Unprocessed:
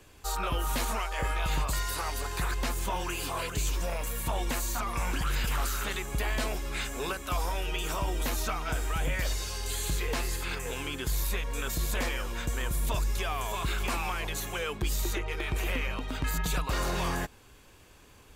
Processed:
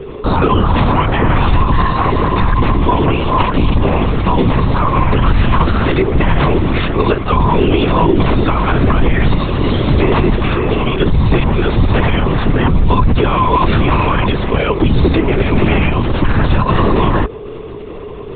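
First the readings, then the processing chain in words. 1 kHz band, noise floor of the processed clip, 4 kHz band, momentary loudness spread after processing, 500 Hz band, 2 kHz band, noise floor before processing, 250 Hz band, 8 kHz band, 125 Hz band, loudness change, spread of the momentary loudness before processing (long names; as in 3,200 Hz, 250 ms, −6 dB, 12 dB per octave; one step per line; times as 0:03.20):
+19.5 dB, −27 dBFS, +11.0 dB, 3 LU, +21.5 dB, +13.5 dB, −55 dBFS, +25.5 dB, below −35 dB, +21.5 dB, +18.0 dB, 3 LU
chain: low-shelf EQ 100 Hz +10 dB
in parallel at 0 dB: downward compressor, threshold −30 dBFS, peak gain reduction 11.5 dB
on the sum: steady tone 420 Hz −45 dBFS
hollow resonant body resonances 380/1,000 Hz, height 17 dB, ringing for 60 ms
linear-prediction vocoder at 8 kHz whisper
boost into a limiter +10 dB
level −1 dB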